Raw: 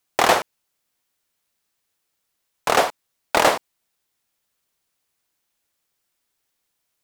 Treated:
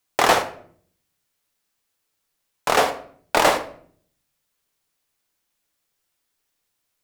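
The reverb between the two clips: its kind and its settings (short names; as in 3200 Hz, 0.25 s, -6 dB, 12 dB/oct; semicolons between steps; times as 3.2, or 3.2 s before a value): shoebox room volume 66 m³, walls mixed, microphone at 0.35 m; gain -1 dB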